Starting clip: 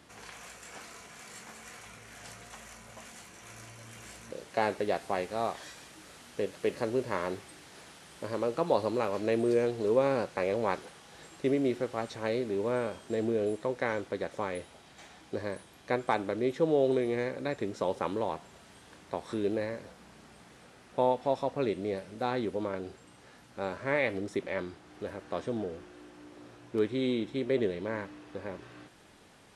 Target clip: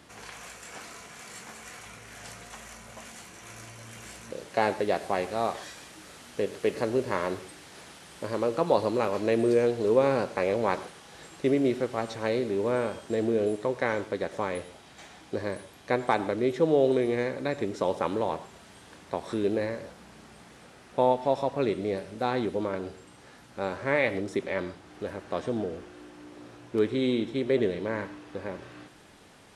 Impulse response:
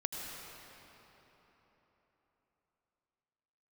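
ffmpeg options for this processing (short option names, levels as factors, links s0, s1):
-filter_complex "[0:a]asplit=2[s0][s1];[1:a]atrim=start_sample=2205,atrim=end_sample=6174[s2];[s1][s2]afir=irnorm=-1:irlink=0,volume=0.562[s3];[s0][s3]amix=inputs=2:normalize=0"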